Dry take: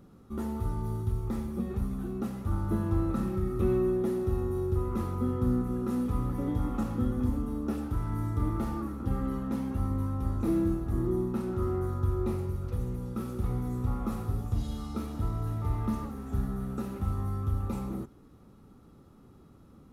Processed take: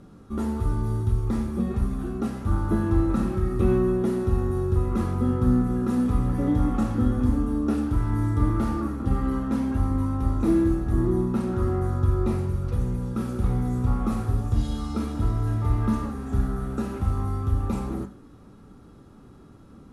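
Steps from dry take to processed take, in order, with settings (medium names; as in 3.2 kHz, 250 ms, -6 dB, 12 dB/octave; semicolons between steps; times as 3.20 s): low-pass 11 kHz 24 dB/octave; on a send: peaking EQ 1.6 kHz +12.5 dB 0.25 oct + reverberation, pre-delay 3 ms, DRR 4.5 dB; on the sum: trim +6 dB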